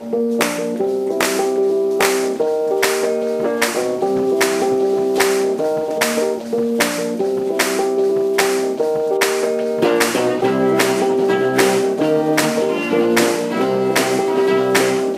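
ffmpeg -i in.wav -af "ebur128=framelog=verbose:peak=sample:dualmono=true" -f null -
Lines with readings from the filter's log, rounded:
Integrated loudness:
  I:         -14.0 LUFS
  Threshold: -24.0 LUFS
Loudness range:
  LRA:         1.8 LU
  Threshold: -34.0 LUFS
  LRA low:   -14.8 LUFS
  LRA high:  -13.0 LUFS
Sample peak:
  Peak:       -4.6 dBFS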